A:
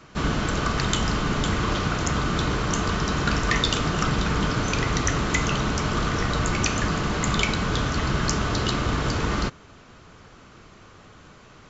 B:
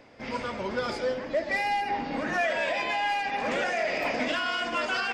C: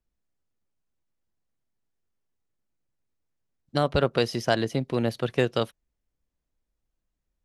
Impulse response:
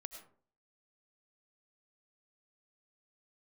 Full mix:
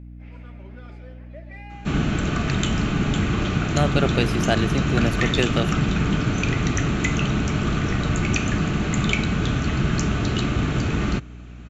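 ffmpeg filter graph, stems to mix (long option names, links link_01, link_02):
-filter_complex "[0:a]equalizer=frequency=170:width=0.42:gain=7,adelay=1700,volume=-2dB[link_01];[1:a]aemphasis=mode=reproduction:type=75kf,volume=-14dB[link_02];[2:a]volume=2.5dB[link_03];[link_01][link_02][link_03]amix=inputs=3:normalize=0,equalizer=frequency=500:width_type=o:width=0.33:gain=-6,equalizer=frequency=1000:width_type=o:width=0.33:gain=-8,equalizer=frequency=2500:width_type=o:width=0.33:gain=6,equalizer=frequency=5000:width_type=o:width=0.33:gain=-8,aeval=exprs='val(0)+0.0126*(sin(2*PI*60*n/s)+sin(2*PI*2*60*n/s)/2+sin(2*PI*3*60*n/s)/3+sin(2*PI*4*60*n/s)/4+sin(2*PI*5*60*n/s)/5)':channel_layout=same"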